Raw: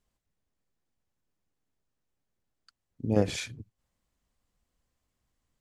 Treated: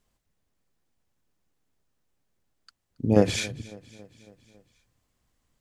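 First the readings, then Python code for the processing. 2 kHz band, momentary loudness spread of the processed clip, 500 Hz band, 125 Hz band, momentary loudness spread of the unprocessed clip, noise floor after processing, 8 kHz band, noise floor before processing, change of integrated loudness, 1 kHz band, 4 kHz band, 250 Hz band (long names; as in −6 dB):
+6.0 dB, 20 LU, +6.0 dB, +4.5 dB, 15 LU, −77 dBFS, +6.0 dB, −83 dBFS, +6.0 dB, +6.0 dB, +6.0 dB, +6.0 dB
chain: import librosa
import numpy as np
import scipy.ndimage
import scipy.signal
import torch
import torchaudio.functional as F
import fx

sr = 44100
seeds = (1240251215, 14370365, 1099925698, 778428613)

p1 = fx.hum_notches(x, sr, base_hz=50, count=2)
p2 = p1 + fx.echo_feedback(p1, sr, ms=276, feedback_pct=60, wet_db=-21.5, dry=0)
y = F.gain(torch.from_numpy(p2), 6.0).numpy()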